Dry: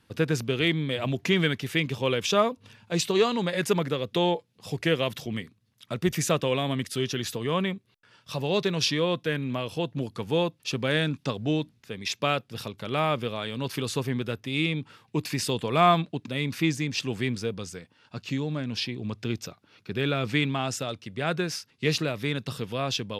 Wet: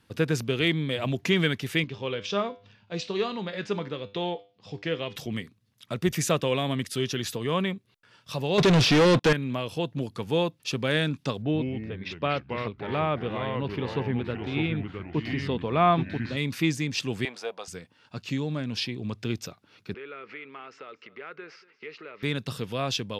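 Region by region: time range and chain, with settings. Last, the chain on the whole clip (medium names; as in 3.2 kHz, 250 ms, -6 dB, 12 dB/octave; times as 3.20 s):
1.84–5.16 s: low-pass 5.4 kHz 24 dB/octave + feedback comb 100 Hz, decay 0.36 s
8.58–9.33 s: de-esser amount 95% + waveshaping leveller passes 5 + distance through air 57 m
11.42–16.37 s: ever faster or slower copies 121 ms, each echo -3 st, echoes 3, each echo -6 dB + distance through air 310 m
17.25–17.68 s: resonant high-pass 710 Hz, resonance Q 3.5 + treble shelf 6 kHz -9 dB
19.94–22.23 s: compression 5:1, threshold -39 dBFS + cabinet simulation 400–3900 Hz, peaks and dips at 420 Hz +9 dB, 690 Hz -6 dB, 1.3 kHz +8 dB, 2.1 kHz +7 dB, 3.6 kHz -9 dB + delay 236 ms -20.5 dB
whole clip: none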